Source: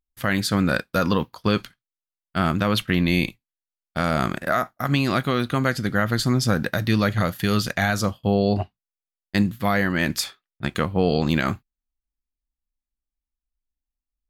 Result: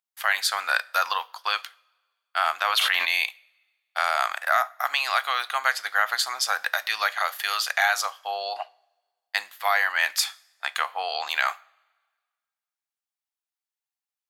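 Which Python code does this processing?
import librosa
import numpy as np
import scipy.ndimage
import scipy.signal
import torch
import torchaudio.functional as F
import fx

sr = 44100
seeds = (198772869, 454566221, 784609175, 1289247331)

y = scipy.signal.sosfilt(scipy.signal.cheby1(4, 1.0, 750.0, 'highpass', fs=sr, output='sos'), x)
y = fx.rev_double_slope(y, sr, seeds[0], early_s=0.49, late_s=1.6, knee_db=-18, drr_db=18.0)
y = fx.sustainer(y, sr, db_per_s=23.0, at=(2.62, 3.22))
y = y * librosa.db_to_amplitude(3.0)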